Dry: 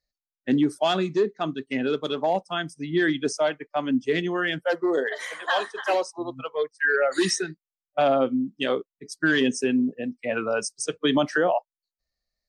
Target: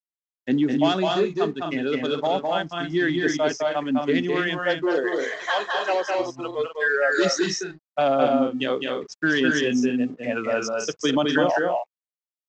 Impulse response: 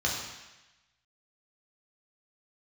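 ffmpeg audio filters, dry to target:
-af "aresample=16000,aeval=exprs='sgn(val(0))*max(abs(val(0))-0.00224,0)':channel_layout=same,aresample=44100,aecho=1:1:207|247.8:0.708|0.447"

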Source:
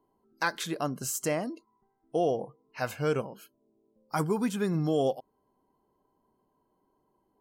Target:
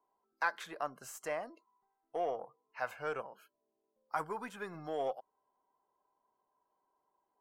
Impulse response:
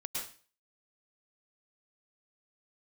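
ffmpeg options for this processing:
-filter_complex "[0:a]aeval=exprs='0.188*(cos(1*acos(clip(val(0)/0.188,-1,1)))-cos(1*PI/2))+0.00596*(cos(6*acos(clip(val(0)/0.188,-1,1)))-cos(6*PI/2))':channel_layout=same,acrossover=split=580 2200:gain=0.1 1 0.2[link_01][link_02][link_03];[link_01][link_02][link_03]amix=inputs=3:normalize=0,volume=-2dB"

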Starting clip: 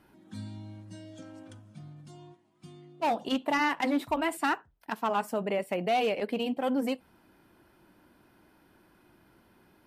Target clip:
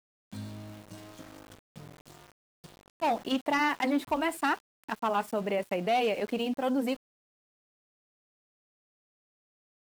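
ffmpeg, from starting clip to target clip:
ffmpeg -i in.wav -af "aeval=exprs='val(0)*gte(abs(val(0)),0.00596)':channel_layout=same" out.wav

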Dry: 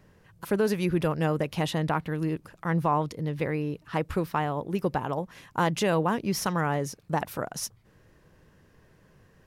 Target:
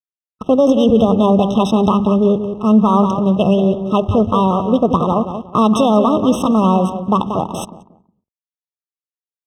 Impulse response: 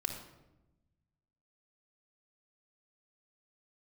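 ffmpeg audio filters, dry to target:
-filter_complex "[0:a]asplit=2[link_01][link_02];[1:a]atrim=start_sample=2205[link_03];[link_02][link_03]afir=irnorm=-1:irlink=0,volume=-12dB[link_04];[link_01][link_04]amix=inputs=2:normalize=0,aeval=exprs='val(0)*gte(abs(val(0)),0.00841)':channel_layout=same,asetrate=57191,aresample=44100,atempo=0.771105,bass=frequency=250:gain=6,treble=frequency=4000:gain=10,asplit=2[link_05][link_06];[link_06]adelay=183,lowpass=frequency=4400:poles=1,volume=-9dB,asplit=2[link_07][link_08];[link_08]adelay=183,lowpass=frequency=4400:poles=1,volume=0.27,asplit=2[link_09][link_10];[link_10]adelay=183,lowpass=frequency=4400:poles=1,volume=0.27[link_11];[link_07][link_09][link_11]amix=inputs=3:normalize=0[link_12];[link_05][link_12]amix=inputs=2:normalize=0,adynamicsmooth=sensitivity=7.5:basefreq=920,highpass=46,aemphasis=mode=reproduction:type=75fm,alimiter=level_in=12.5dB:limit=-1dB:release=50:level=0:latency=1,afftfilt=real='re*eq(mod(floor(b*sr/1024/1300),2),0)':imag='im*eq(mod(floor(b*sr/1024/1300),2),0)':win_size=1024:overlap=0.75,volume=-1.5dB"

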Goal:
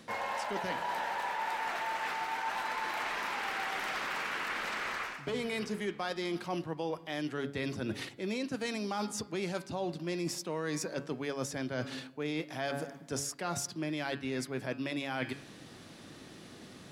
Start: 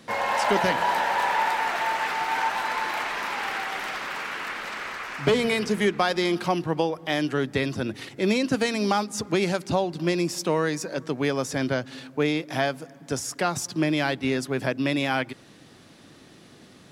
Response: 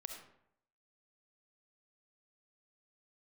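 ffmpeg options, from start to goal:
-af "bandreject=frequency=140.6:width_type=h:width=4,bandreject=frequency=281.2:width_type=h:width=4,bandreject=frequency=421.8:width_type=h:width=4,bandreject=frequency=562.4:width_type=h:width=4,bandreject=frequency=703:width_type=h:width=4,bandreject=frequency=843.6:width_type=h:width=4,bandreject=frequency=984.2:width_type=h:width=4,bandreject=frequency=1124.8:width_type=h:width=4,bandreject=frequency=1265.4:width_type=h:width=4,bandreject=frequency=1406:width_type=h:width=4,bandreject=frequency=1546.6:width_type=h:width=4,bandreject=frequency=1687.2:width_type=h:width=4,bandreject=frequency=1827.8:width_type=h:width=4,bandreject=frequency=1968.4:width_type=h:width=4,bandreject=frequency=2109:width_type=h:width=4,bandreject=frequency=2249.6:width_type=h:width=4,bandreject=frequency=2390.2:width_type=h:width=4,bandreject=frequency=2530.8:width_type=h:width=4,bandreject=frequency=2671.4:width_type=h:width=4,bandreject=frequency=2812:width_type=h:width=4,bandreject=frequency=2952.6:width_type=h:width=4,bandreject=frequency=3093.2:width_type=h:width=4,bandreject=frequency=3233.8:width_type=h:width=4,bandreject=frequency=3374.4:width_type=h:width=4,bandreject=frequency=3515:width_type=h:width=4,bandreject=frequency=3655.6:width_type=h:width=4,bandreject=frequency=3796.2:width_type=h:width=4,bandreject=frequency=3936.8:width_type=h:width=4,bandreject=frequency=4077.4:width_type=h:width=4,bandreject=frequency=4218:width_type=h:width=4,bandreject=frequency=4358.6:width_type=h:width=4,bandreject=frequency=4499.2:width_type=h:width=4,bandreject=frequency=4639.8:width_type=h:width=4,bandreject=frequency=4780.4:width_type=h:width=4,bandreject=frequency=4921:width_type=h:width=4,bandreject=frequency=5061.6:width_type=h:width=4,areverse,acompressor=threshold=-32dB:ratio=10,areverse"

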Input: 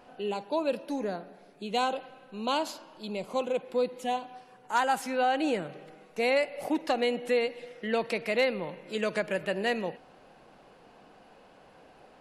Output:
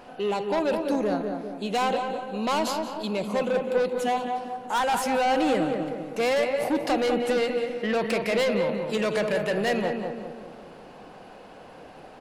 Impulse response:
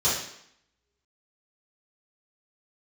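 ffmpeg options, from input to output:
-filter_complex "[0:a]asplit=2[link_01][link_02];[link_02]aecho=0:1:176|352|528:0.141|0.0565|0.0226[link_03];[link_01][link_03]amix=inputs=2:normalize=0,asoftclip=type=tanh:threshold=-28.5dB,asplit=2[link_04][link_05];[link_05]adelay=201,lowpass=frequency=1100:poles=1,volume=-4dB,asplit=2[link_06][link_07];[link_07]adelay=201,lowpass=frequency=1100:poles=1,volume=0.54,asplit=2[link_08][link_09];[link_09]adelay=201,lowpass=frequency=1100:poles=1,volume=0.54,asplit=2[link_10][link_11];[link_11]adelay=201,lowpass=frequency=1100:poles=1,volume=0.54,asplit=2[link_12][link_13];[link_13]adelay=201,lowpass=frequency=1100:poles=1,volume=0.54,asplit=2[link_14][link_15];[link_15]adelay=201,lowpass=frequency=1100:poles=1,volume=0.54,asplit=2[link_16][link_17];[link_17]adelay=201,lowpass=frequency=1100:poles=1,volume=0.54[link_18];[link_06][link_08][link_10][link_12][link_14][link_16][link_18]amix=inputs=7:normalize=0[link_19];[link_04][link_19]amix=inputs=2:normalize=0,volume=8dB"

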